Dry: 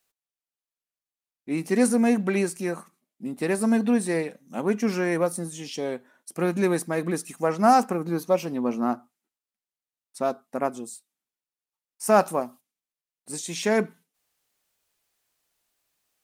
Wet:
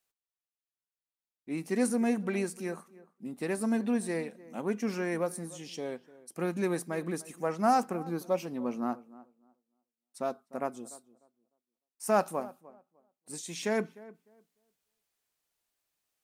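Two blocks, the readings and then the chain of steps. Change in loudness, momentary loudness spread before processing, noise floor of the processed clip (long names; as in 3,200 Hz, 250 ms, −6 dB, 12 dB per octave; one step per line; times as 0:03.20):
−7.5 dB, 15 LU, below −85 dBFS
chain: tape delay 300 ms, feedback 22%, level −18 dB, low-pass 1,300 Hz
level −7.5 dB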